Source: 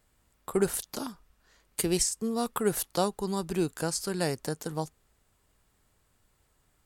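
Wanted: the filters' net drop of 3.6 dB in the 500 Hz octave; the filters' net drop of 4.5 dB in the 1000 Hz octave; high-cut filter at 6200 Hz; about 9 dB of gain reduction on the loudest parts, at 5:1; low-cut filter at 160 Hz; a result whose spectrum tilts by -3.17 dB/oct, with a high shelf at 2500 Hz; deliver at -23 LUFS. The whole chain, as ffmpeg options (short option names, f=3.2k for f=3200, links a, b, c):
-af "highpass=160,lowpass=6.2k,equalizer=f=500:t=o:g=-4,equalizer=f=1k:t=o:g=-6,highshelf=f=2.5k:g=8,acompressor=threshold=-32dB:ratio=5,volume=14dB"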